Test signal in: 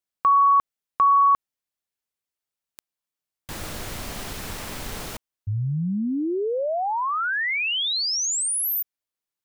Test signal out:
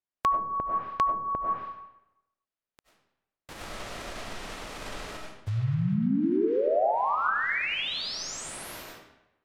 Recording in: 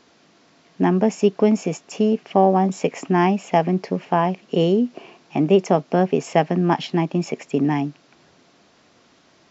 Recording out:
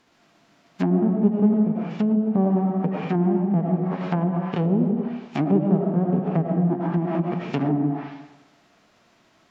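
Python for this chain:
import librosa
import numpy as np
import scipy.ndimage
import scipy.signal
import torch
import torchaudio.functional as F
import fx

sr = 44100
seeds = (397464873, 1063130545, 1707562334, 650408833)

y = fx.envelope_flatten(x, sr, power=0.3)
y = fx.lowpass(y, sr, hz=1700.0, slope=6)
y = fx.rev_freeverb(y, sr, rt60_s=0.91, hf_ratio=0.8, predelay_ms=55, drr_db=-1.0)
y = fx.env_lowpass_down(y, sr, base_hz=480.0, full_db=-14.0)
y = y * 10.0 ** (-3.0 / 20.0)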